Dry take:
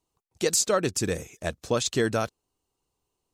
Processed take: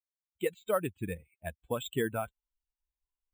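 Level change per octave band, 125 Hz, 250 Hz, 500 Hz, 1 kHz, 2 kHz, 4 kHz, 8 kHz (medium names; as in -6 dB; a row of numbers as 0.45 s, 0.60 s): -7.5 dB, -7.5 dB, -7.0 dB, -6.5 dB, -8.0 dB, -14.0 dB, -21.5 dB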